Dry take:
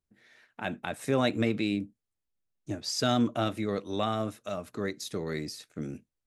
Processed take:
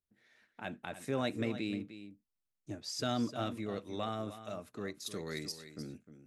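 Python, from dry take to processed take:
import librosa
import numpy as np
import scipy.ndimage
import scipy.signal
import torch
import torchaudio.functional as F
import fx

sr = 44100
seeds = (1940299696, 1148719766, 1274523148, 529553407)

y = fx.high_shelf(x, sr, hz=2400.0, db=11.0, at=(5.06, 5.52))
y = y + 10.0 ** (-12.5 / 20.0) * np.pad(y, (int(305 * sr / 1000.0), 0))[:len(y)]
y = y * 10.0 ** (-8.0 / 20.0)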